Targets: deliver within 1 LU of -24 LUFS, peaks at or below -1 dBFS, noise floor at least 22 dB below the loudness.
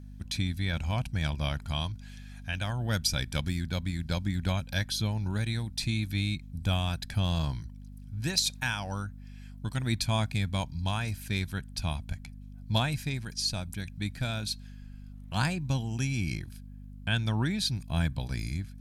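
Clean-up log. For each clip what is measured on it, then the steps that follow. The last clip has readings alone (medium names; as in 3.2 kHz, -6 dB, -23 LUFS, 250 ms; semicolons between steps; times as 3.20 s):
hum 50 Hz; highest harmonic 250 Hz; hum level -43 dBFS; loudness -31.5 LUFS; peak level -13.0 dBFS; loudness target -24.0 LUFS
-> de-hum 50 Hz, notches 5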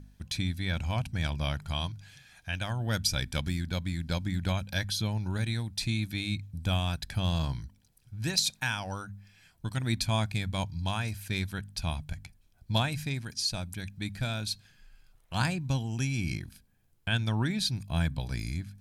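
hum not found; loudness -32.0 LUFS; peak level -13.0 dBFS; loudness target -24.0 LUFS
-> trim +8 dB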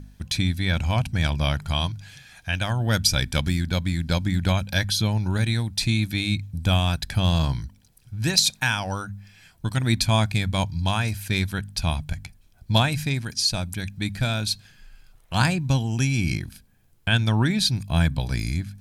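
loudness -24.0 LUFS; peak level -5.0 dBFS; noise floor -57 dBFS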